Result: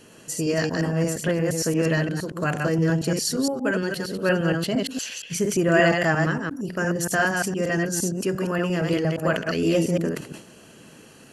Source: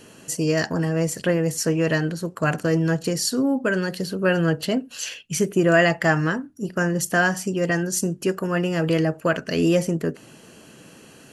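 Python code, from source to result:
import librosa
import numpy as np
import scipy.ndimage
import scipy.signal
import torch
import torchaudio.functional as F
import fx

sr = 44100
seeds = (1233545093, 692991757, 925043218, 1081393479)

y = fx.reverse_delay(x, sr, ms=116, wet_db=-3)
y = fx.sustainer(y, sr, db_per_s=110.0)
y = y * librosa.db_to_amplitude(-3.0)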